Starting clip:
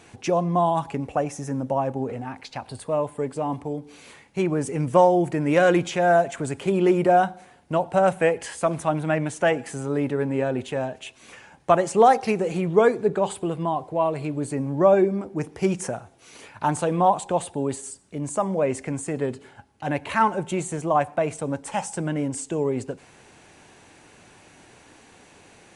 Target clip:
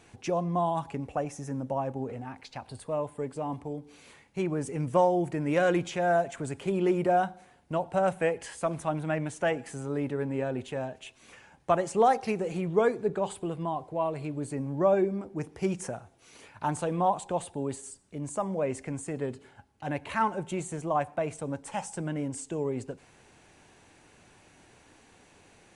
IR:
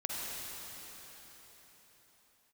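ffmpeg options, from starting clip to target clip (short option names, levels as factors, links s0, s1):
-af "lowshelf=f=67:g=7.5,volume=0.447"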